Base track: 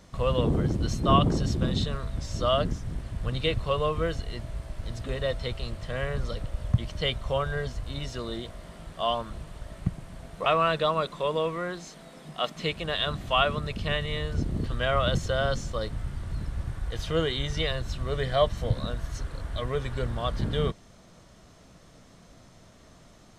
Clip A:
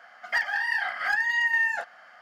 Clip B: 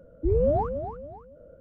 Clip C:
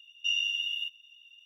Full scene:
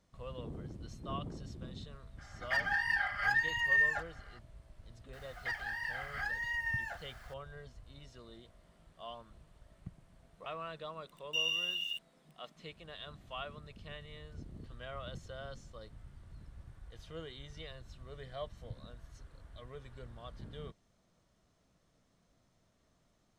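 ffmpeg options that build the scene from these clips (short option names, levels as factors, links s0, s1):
-filter_complex "[1:a]asplit=2[s0][s1];[0:a]volume=0.106[s2];[s0]aecho=1:1:5:0.9[s3];[s1]aeval=exprs='val(0)+0.5*0.00841*sgn(val(0))':c=same[s4];[3:a]aeval=exprs='val(0)*gte(abs(val(0)),0.00473)':c=same[s5];[s3]atrim=end=2.21,asetpts=PTS-STARTPTS,volume=0.376,afade=t=in:d=0.004:c=hsin,afade=t=out:st=2.206:d=0.004:c=hsin,adelay=2180[s6];[s4]atrim=end=2.21,asetpts=PTS-STARTPTS,volume=0.224,afade=t=in:d=0.004:c=hsin,afade=t=out:st=2.206:d=0.004:c=hsin,adelay=226233S[s7];[s5]atrim=end=1.45,asetpts=PTS-STARTPTS,volume=0.596,afade=t=in:d=0.004:c=hsin,afade=t=out:st=1.446:d=0.004:c=hsin,adelay=11090[s8];[s2][s6][s7][s8]amix=inputs=4:normalize=0"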